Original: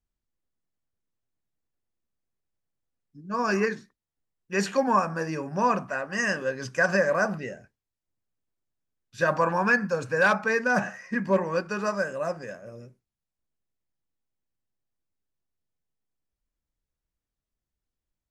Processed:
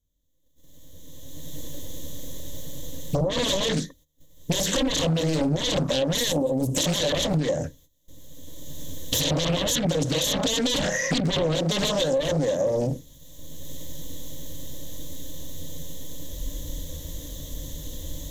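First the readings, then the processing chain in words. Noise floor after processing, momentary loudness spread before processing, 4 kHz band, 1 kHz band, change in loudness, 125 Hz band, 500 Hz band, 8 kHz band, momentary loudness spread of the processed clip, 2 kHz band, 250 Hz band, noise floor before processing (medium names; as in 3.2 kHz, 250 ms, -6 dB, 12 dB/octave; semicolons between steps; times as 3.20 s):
-62 dBFS, 10 LU, +18.0 dB, -7.0 dB, +1.5 dB, +10.0 dB, +2.0 dB, +14.5 dB, 17 LU, -7.5 dB, +4.5 dB, under -85 dBFS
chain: recorder AGC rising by 19 dB/s; sine folder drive 17 dB, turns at -9.5 dBFS; high-order bell 1.4 kHz -13.5 dB; peak limiter -13.5 dBFS, peak gain reduction 9 dB; time-frequency box 6.32–6.76 s, 1–7.2 kHz -22 dB; gate -49 dBFS, range -16 dB; rippled EQ curve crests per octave 1.1, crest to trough 14 dB; compression 12:1, threshold -20 dBFS, peak gain reduction 11 dB; loudspeaker Doppler distortion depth 0.54 ms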